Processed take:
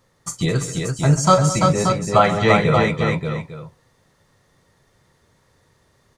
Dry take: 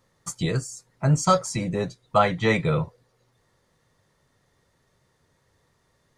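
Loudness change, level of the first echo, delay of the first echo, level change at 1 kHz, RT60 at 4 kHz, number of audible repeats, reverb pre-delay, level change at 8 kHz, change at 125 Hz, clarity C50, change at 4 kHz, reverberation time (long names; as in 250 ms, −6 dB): +6.0 dB, −12.5 dB, 43 ms, +7.0 dB, no reverb audible, 6, no reverb audible, +7.0 dB, +6.5 dB, no reverb audible, +7.0 dB, no reverb audible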